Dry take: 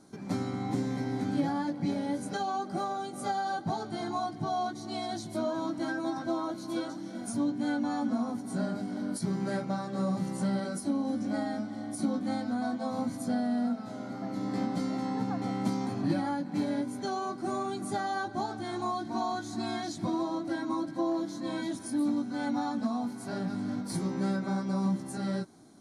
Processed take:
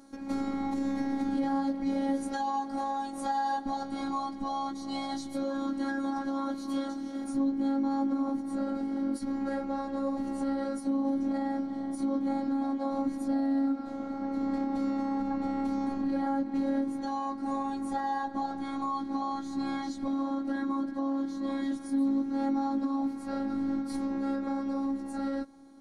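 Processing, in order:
high-shelf EQ 3,200 Hz −4.5 dB, from 0:07.24 −12 dB
brickwall limiter −25.5 dBFS, peak gain reduction 7.5 dB
phases set to zero 274 Hz
level +4.5 dB

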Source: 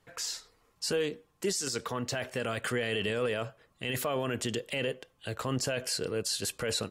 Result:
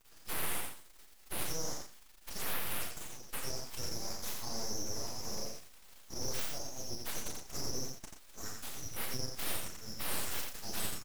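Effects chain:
Butterworth high-pass 2,200 Hz 96 dB per octave
brickwall limiter −30.5 dBFS, peak gain reduction 10.5 dB
surface crackle 150 per second −43 dBFS
double-tracking delay 23 ms −5 dB
phase-vocoder stretch with locked phases 1.6×
frequency shifter +36 Hz
full-wave rectification
single-tap delay 87 ms −4.5 dB
level +5 dB

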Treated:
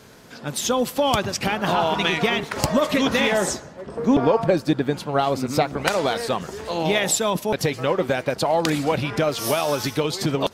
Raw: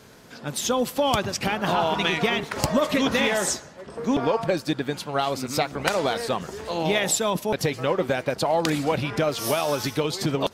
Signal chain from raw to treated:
0:03.32–0:05.77: tilt shelving filter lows +4 dB, about 1,300 Hz
level +2 dB

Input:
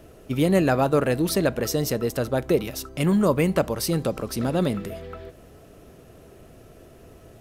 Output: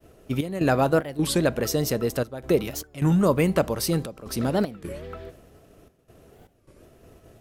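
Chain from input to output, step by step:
downward expander −43 dBFS
gate pattern "xx.xx.xxx" 74 BPM −12 dB
wow of a warped record 33 1/3 rpm, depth 250 cents

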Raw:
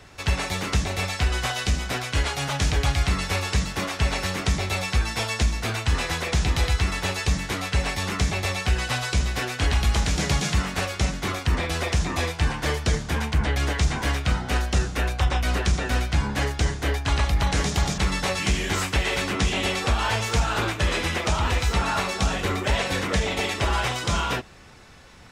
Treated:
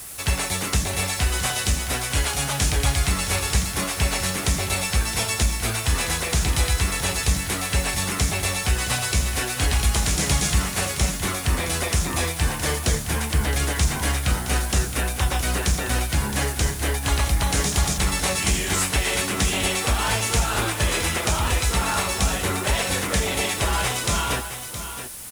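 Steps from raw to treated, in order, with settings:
background noise white −45 dBFS
parametric band 10,000 Hz +14 dB 0.91 octaves
single-tap delay 667 ms −10.5 dB

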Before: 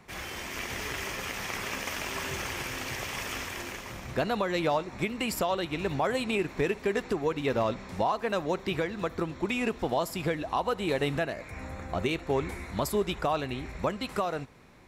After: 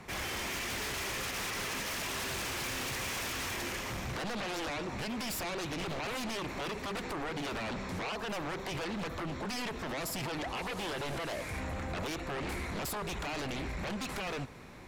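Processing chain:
0:10.55–0:11.59: linear delta modulator 64 kbit/s, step −43.5 dBFS
brickwall limiter −25 dBFS, peak gain reduction 7.5 dB
sine wavefolder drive 10 dB, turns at −25 dBFS
level −8.5 dB

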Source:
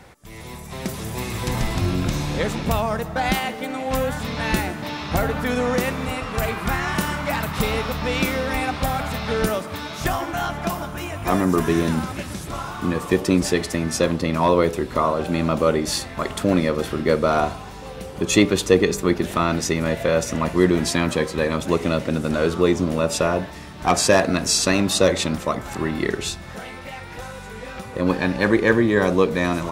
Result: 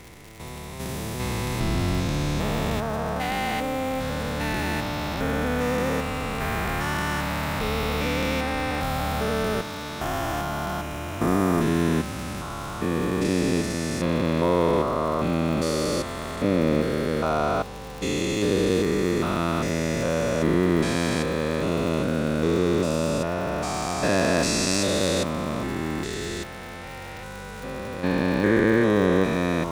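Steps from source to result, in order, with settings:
spectrum averaged block by block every 400 ms
surface crackle 110 per second −32 dBFS

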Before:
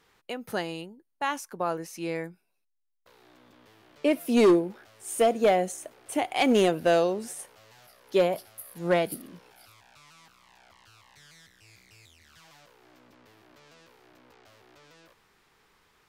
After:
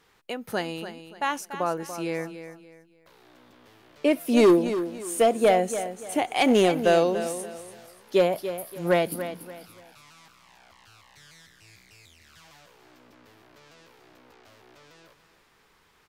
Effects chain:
repeating echo 288 ms, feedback 31%, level −11 dB
level +2 dB

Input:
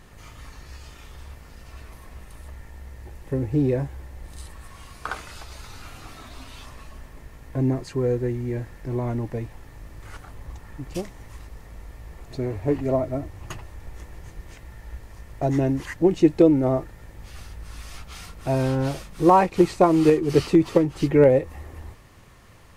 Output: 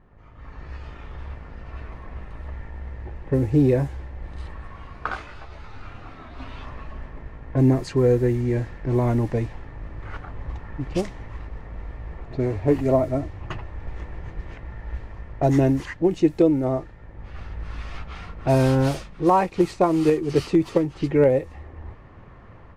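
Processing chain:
automatic gain control gain up to 12 dB
low-pass that shuts in the quiet parts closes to 1,300 Hz, open at −10.5 dBFS
0:05.08–0:06.38: micro pitch shift up and down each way 27 cents → 12 cents
level −6 dB

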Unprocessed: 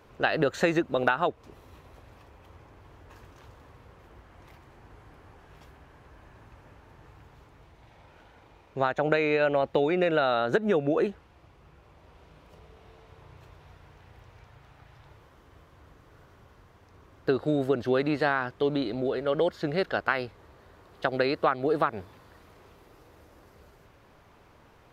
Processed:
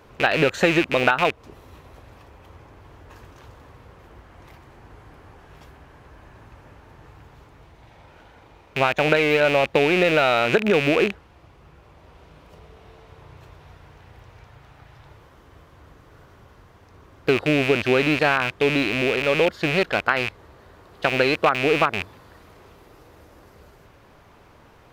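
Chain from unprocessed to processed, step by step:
loose part that buzzes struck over −41 dBFS, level −18 dBFS
level +5.5 dB

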